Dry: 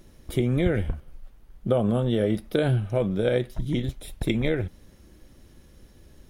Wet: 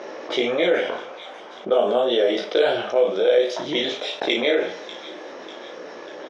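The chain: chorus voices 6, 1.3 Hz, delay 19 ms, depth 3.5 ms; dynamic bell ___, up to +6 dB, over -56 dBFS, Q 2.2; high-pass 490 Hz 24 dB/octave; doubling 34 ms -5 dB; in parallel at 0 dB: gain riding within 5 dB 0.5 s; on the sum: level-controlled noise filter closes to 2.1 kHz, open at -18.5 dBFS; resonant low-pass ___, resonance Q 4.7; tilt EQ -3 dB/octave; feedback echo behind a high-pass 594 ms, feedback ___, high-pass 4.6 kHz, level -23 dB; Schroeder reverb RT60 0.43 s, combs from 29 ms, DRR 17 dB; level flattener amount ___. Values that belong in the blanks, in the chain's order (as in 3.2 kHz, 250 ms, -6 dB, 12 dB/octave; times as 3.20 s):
3.3 kHz, 5.9 kHz, 47%, 50%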